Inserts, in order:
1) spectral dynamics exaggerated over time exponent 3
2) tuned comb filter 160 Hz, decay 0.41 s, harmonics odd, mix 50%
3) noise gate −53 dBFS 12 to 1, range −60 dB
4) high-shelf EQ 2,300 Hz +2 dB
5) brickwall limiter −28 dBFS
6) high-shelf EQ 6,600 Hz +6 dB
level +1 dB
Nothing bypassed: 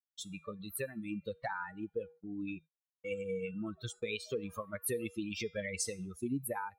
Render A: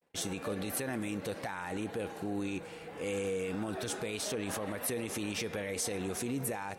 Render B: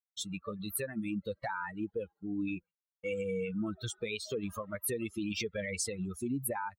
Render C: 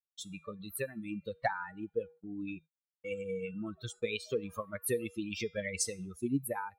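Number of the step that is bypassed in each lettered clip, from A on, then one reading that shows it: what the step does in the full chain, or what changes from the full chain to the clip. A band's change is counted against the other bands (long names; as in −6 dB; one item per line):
1, 4 kHz band +2.0 dB
2, 250 Hz band +1.5 dB
5, change in crest factor +3.0 dB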